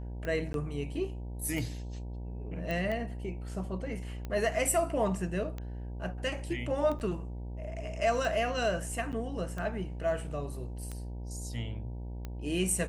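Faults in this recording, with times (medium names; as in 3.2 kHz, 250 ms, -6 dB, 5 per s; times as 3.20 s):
buzz 60 Hz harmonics 16 -39 dBFS
tick 45 rpm -25 dBFS
0.53–0.54 s: dropout 12 ms
2.71 s: pop
6.99–7.00 s: dropout 9.2 ms
9.12–9.13 s: dropout 8.4 ms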